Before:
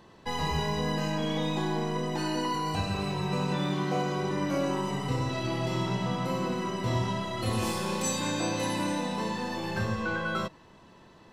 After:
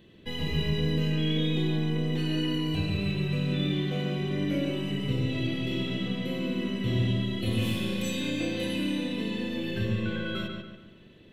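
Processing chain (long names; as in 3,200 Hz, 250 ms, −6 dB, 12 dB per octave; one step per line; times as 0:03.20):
drawn EQ curve 340 Hz 0 dB, 610 Hz −7 dB, 900 Hz −21 dB, 2,300 Hz 0 dB, 3,400 Hz +4 dB, 4,900 Hz −13 dB, 7,900 Hz −11 dB, 13,000 Hz −2 dB
feedback echo with a low-pass in the loop 142 ms, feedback 43%, low-pass 3,900 Hz, level −4 dB
level +1 dB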